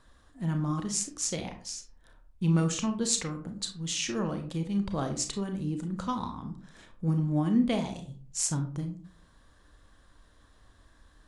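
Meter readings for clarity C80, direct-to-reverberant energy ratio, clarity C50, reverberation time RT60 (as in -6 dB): 14.0 dB, 5.5 dB, 10.0 dB, 0.45 s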